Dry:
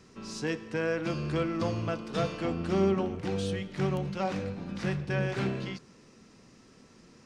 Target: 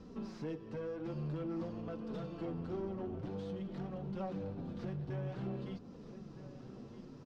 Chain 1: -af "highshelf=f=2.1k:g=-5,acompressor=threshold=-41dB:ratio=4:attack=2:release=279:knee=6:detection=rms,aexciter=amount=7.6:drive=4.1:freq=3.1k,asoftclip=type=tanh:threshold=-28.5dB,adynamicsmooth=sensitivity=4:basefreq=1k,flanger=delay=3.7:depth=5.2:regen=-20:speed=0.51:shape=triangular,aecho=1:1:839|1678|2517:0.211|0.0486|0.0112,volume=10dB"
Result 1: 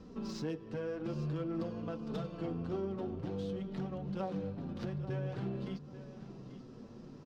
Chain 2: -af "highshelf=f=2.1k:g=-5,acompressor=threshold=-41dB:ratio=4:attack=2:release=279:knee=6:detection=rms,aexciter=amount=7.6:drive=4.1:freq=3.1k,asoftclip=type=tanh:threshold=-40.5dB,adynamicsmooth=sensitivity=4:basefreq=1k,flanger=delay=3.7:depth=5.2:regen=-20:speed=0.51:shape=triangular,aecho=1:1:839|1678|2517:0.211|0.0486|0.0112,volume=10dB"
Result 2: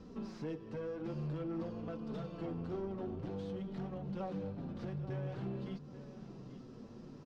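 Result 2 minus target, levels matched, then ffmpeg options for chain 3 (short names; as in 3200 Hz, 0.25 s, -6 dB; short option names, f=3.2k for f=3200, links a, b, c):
echo 0.425 s early
-af "highshelf=f=2.1k:g=-5,acompressor=threshold=-41dB:ratio=4:attack=2:release=279:knee=6:detection=rms,aexciter=amount=7.6:drive=4.1:freq=3.1k,asoftclip=type=tanh:threshold=-40.5dB,adynamicsmooth=sensitivity=4:basefreq=1k,flanger=delay=3.7:depth=5.2:regen=-20:speed=0.51:shape=triangular,aecho=1:1:1264|2528|3792:0.211|0.0486|0.0112,volume=10dB"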